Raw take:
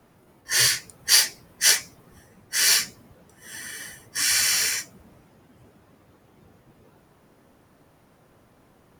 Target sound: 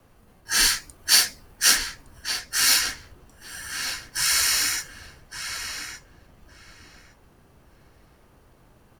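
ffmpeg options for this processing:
ffmpeg -i in.wav -filter_complex "[0:a]lowshelf=frequency=190:gain=5,acrossover=split=290|2400[link_01][link_02][link_03];[link_01]acrusher=samples=29:mix=1:aa=0.000001[link_04];[link_04][link_02][link_03]amix=inputs=3:normalize=0,afreqshift=-150,asplit=2[link_05][link_06];[link_06]adelay=1163,lowpass=frequency=3700:poles=1,volume=-7dB,asplit=2[link_07][link_08];[link_08]adelay=1163,lowpass=frequency=3700:poles=1,volume=0.17,asplit=2[link_09][link_10];[link_10]adelay=1163,lowpass=frequency=3700:poles=1,volume=0.17[link_11];[link_05][link_07][link_09][link_11]amix=inputs=4:normalize=0" out.wav

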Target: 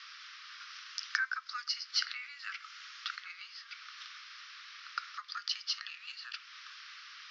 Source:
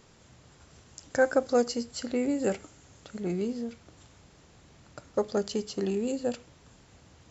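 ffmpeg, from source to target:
ffmpeg -i in.wav -af "acompressor=threshold=-39dB:ratio=4,asuperpass=centerf=2600:order=20:qfactor=0.58,volume=14.5dB" out.wav

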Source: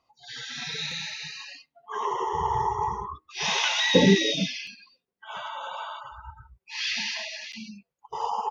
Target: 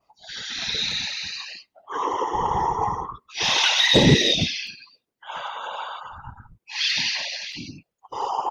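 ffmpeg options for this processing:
ffmpeg -i in.wav -af "adynamicequalizer=threshold=0.00891:dfrequency=4100:dqfactor=1.5:tfrequency=4100:tqfactor=1.5:attack=5:release=100:ratio=0.375:range=2.5:mode=boostabove:tftype=bell,acontrast=74,afftfilt=real='hypot(re,im)*cos(2*PI*random(0))':imag='hypot(re,im)*sin(2*PI*random(1))':win_size=512:overlap=0.75,volume=2.5dB" out.wav

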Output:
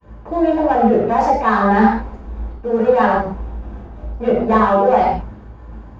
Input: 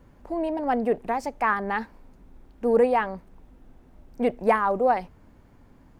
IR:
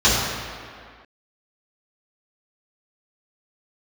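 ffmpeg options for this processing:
-filter_complex "[0:a]asplit=2[link_01][link_02];[link_02]highpass=frequency=720:poles=1,volume=15dB,asoftclip=type=tanh:threshold=-9dB[link_03];[link_01][link_03]amix=inputs=2:normalize=0,lowpass=frequency=1000:poles=1,volume=-6dB,lowshelf=frequency=94:gain=12,bandreject=frequency=60:width_type=h:width=6,bandreject=frequency=120:width_type=h:width=6,bandreject=frequency=180:width_type=h:width=6,bandreject=frequency=240:width_type=h:width=6,areverse,acompressor=threshold=-28dB:ratio=12,areverse,agate=range=-33dB:threshold=-42dB:ratio=3:detection=peak,asplit=2[link_04][link_05];[link_05]volume=30.5dB,asoftclip=hard,volume=-30.5dB,volume=-7dB[link_06];[link_04][link_06]amix=inputs=2:normalize=0[link_07];[1:a]atrim=start_sample=2205,afade=type=out:start_time=0.22:duration=0.01,atrim=end_sample=10143[link_08];[link_07][link_08]afir=irnorm=-1:irlink=0,volume=-8dB"

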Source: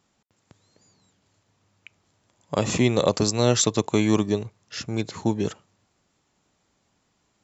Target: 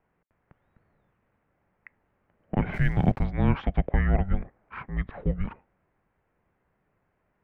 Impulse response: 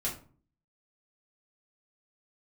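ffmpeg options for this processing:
-filter_complex "[0:a]asettb=1/sr,asplit=3[link_01][link_02][link_03];[link_01]atrim=end=3.904[link_04];[link_02]atrim=start=3.9:end=4.86,asetpts=PTS-STARTPTS,afade=type=in:duration=0.004:curve=qsin,afade=type=out:start_time=0.956:duration=0.004:curve=qsin,asplit=2[link_05][link_06];[link_06]highpass=frequency=720:poles=1,volume=14dB,asoftclip=type=tanh:threshold=-6.5dB[link_07];[link_05][link_07]amix=inputs=2:normalize=0,lowpass=frequency=1100:poles=1,volume=-6dB[link_08];[link_03]atrim=start=4.856[link_09];[link_04][link_08]acrossfade=duration=0.004:curve1=hsin:curve2=qsin[link_10];[link_10][link_09]acrossfade=duration=0.004:curve1=qsin:curve2=hsin,highpass=frequency=230:width_type=q:width=0.5412,highpass=frequency=230:width_type=q:width=1.307,lowpass=frequency=2500:width_type=q:width=0.5176,lowpass=frequency=2500:width_type=q:width=0.7071,lowpass=frequency=2500:width_type=q:width=1.932,afreqshift=-390,asplit=3[link_11][link_12][link_13];[link_11]afade=type=out:start_time=2.73:duration=0.02[link_14];[link_12]aeval=exprs='sgn(val(0))*max(abs(val(0))-0.00282,0)':channel_layout=same,afade=type=in:start_time=2.73:duration=0.02,afade=type=out:start_time=3.24:duration=0.02[link_15];[link_13]afade=type=in:start_time=3.24:duration=0.02[link_16];[link_14][link_15][link_16]amix=inputs=3:normalize=0"

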